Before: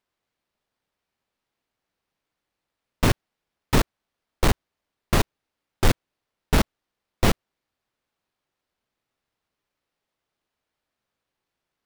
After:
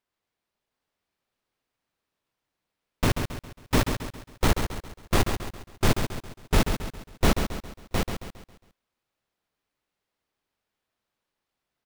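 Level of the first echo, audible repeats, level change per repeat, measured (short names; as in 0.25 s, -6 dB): -7.0 dB, 9, no steady repeat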